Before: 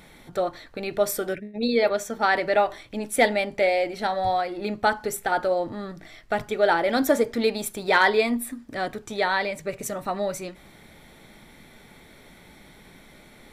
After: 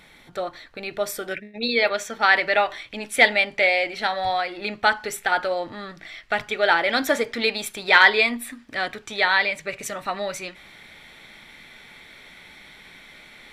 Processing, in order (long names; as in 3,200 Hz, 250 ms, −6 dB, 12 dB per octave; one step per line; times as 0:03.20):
parametric band 2,600 Hz +8.5 dB 2.7 octaves, from 0:01.31 +15 dB
level −5.5 dB